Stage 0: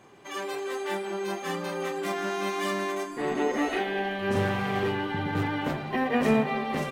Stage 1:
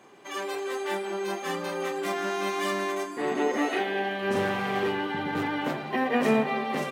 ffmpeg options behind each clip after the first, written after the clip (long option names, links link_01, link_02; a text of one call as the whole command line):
ffmpeg -i in.wav -af "highpass=200,volume=1dB" out.wav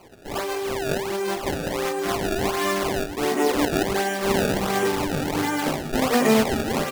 ffmpeg -i in.wav -af "acrusher=samples=24:mix=1:aa=0.000001:lfo=1:lforange=38.4:lforate=1.4,volume=5dB" out.wav